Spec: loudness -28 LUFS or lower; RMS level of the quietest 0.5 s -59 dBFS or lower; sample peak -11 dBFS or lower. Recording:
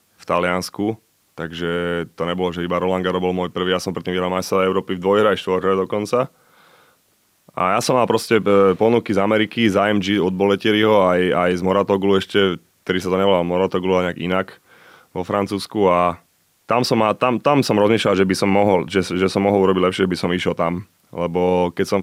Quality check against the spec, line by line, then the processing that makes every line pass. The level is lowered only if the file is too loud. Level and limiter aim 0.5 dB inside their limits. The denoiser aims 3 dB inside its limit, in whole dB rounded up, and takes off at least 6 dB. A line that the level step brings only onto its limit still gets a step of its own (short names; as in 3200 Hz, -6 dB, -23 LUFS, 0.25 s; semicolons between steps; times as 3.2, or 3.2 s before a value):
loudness -18.5 LUFS: fail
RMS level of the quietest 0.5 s -61 dBFS: OK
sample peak -3.5 dBFS: fail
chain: gain -10 dB